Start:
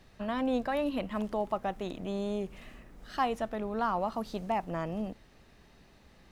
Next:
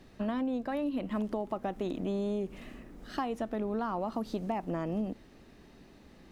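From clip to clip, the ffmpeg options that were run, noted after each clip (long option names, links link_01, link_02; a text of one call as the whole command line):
ffmpeg -i in.wav -af "equalizer=frequency=290:width_type=o:width=1.3:gain=9,acompressor=threshold=-29dB:ratio=10" out.wav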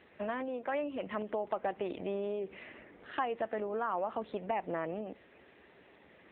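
ffmpeg -i in.wav -af "equalizer=frequency=125:width_type=o:width=1:gain=-10,equalizer=frequency=250:width_type=o:width=1:gain=-8,equalizer=frequency=500:width_type=o:width=1:gain=4,equalizer=frequency=2000:width_type=o:width=1:gain=7" -ar 8000 -c:a libopencore_amrnb -b:a 7950 out.amr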